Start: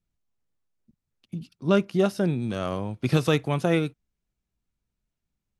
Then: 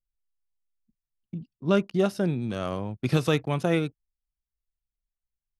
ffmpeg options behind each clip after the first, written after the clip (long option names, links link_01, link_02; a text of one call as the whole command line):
ffmpeg -i in.wav -af "anlmdn=0.0631,volume=-1.5dB" out.wav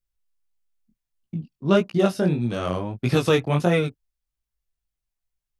ffmpeg -i in.wav -af "flanger=delay=16.5:depth=6.9:speed=1.6,volume=7.5dB" out.wav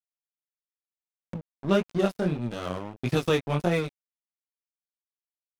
ffmpeg -i in.wav -af "aeval=exprs='sgn(val(0))*max(abs(val(0))-0.0266,0)':channel_layout=same,acompressor=mode=upward:threshold=-26dB:ratio=2.5,volume=-3.5dB" out.wav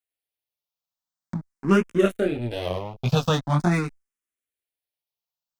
ffmpeg -i in.wav -filter_complex "[0:a]asplit=2[link_01][link_02];[link_02]afreqshift=0.44[link_03];[link_01][link_03]amix=inputs=2:normalize=1,volume=7dB" out.wav